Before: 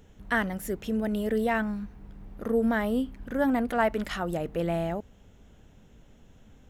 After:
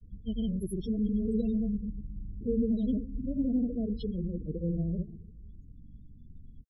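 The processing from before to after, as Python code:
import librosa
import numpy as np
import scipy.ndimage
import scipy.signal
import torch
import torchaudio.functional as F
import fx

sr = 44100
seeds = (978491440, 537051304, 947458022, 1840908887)

p1 = fx.reverse_delay(x, sr, ms=143, wet_db=-12.0)
p2 = scipy.signal.sosfilt(scipy.signal.ellip(3, 1.0, 40, [490.0, 3500.0], 'bandstop', fs=sr, output='sos'), p1)
p3 = fx.peak_eq(p2, sr, hz=460.0, db=-13.5, octaves=1.9)
p4 = fx.echo_bbd(p3, sr, ms=155, stages=2048, feedback_pct=43, wet_db=-17.0)
p5 = fx.granulator(p4, sr, seeds[0], grain_ms=100.0, per_s=20.0, spray_ms=100.0, spread_st=0)
p6 = 10.0 ** (-37.5 / 20.0) * np.tanh(p5 / 10.0 ** (-37.5 / 20.0))
p7 = p5 + (p6 * 10.0 ** (-11.0 / 20.0))
p8 = fx.spec_topn(p7, sr, count=16)
y = p8 * 10.0 ** (6.0 / 20.0)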